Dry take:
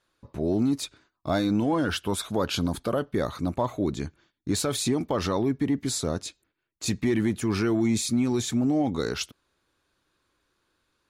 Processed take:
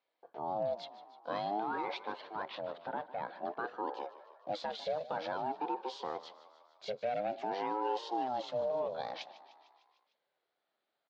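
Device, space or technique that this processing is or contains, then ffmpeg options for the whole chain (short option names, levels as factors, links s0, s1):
voice changer toy: -filter_complex "[0:a]asettb=1/sr,asplit=3[s0][s1][s2];[s0]atrim=end=2.104[s3];[s1]atrim=start=2.1:end=3.43,asetpts=PTS-STARTPTS,afade=t=in:d=0.004:c=qsin,afade=t=out:st=1.326:d=0.004:c=qsin,bass=f=250:g=-6,treble=f=4000:g=-14[s4];[s2]atrim=start=3.426[s5];[s3][s4]acrossfade=d=0.004:c1=hsin:c2=qsin[s6];[s6][s5]acrossfade=d=0.004:c1=qsin:c2=hsin,aeval=exprs='val(0)*sin(2*PI*480*n/s+480*0.35/0.51*sin(2*PI*0.51*n/s))':c=same,lowpass=5900,highpass=450,equalizer=f=550:t=q:w=4:g=4,equalizer=f=1100:t=q:w=4:g=-5,equalizer=f=1900:t=q:w=4:g=-6,equalizer=f=2800:t=q:w=4:g=-4,lowpass=f=4100:w=0.5412,lowpass=f=4100:w=1.3066,equalizer=f=140:w=2.8:g=6,asplit=7[s7][s8][s9][s10][s11][s12][s13];[s8]adelay=151,afreqshift=41,volume=0.15[s14];[s9]adelay=302,afreqshift=82,volume=0.0944[s15];[s10]adelay=453,afreqshift=123,volume=0.0596[s16];[s11]adelay=604,afreqshift=164,volume=0.0376[s17];[s12]adelay=755,afreqshift=205,volume=0.0234[s18];[s13]adelay=906,afreqshift=246,volume=0.0148[s19];[s7][s14][s15][s16][s17][s18][s19]amix=inputs=7:normalize=0,volume=0.531"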